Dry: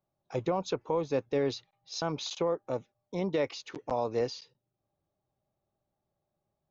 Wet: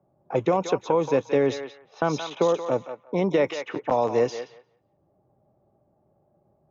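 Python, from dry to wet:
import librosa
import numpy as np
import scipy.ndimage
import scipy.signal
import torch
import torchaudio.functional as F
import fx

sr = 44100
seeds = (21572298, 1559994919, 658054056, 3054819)

p1 = fx.highpass(x, sr, hz=130.0, slope=6)
p2 = fx.peak_eq(p1, sr, hz=4500.0, db=-14.5, octaves=0.37)
p3 = p2 + fx.echo_thinned(p2, sr, ms=176, feedback_pct=25, hz=1100.0, wet_db=-6, dry=0)
p4 = fx.env_lowpass(p3, sr, base_hz=710.0, full_db=-28.0)
p5 = fx.band_squash(p4, sr, depth_pct=40)
y = F.gain(torch.from_numpy(p5), 8.5).numpy()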